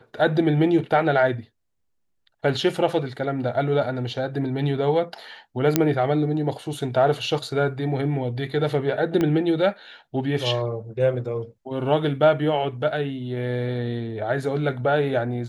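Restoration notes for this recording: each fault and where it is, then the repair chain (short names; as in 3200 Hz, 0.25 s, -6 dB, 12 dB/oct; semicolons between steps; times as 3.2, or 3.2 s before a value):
5.76 pop -2 dBFS
9.21 pop -11 dBFS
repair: de-click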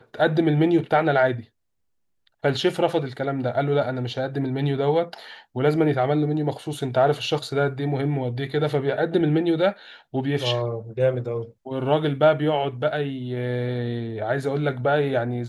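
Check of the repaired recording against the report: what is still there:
9.21 pop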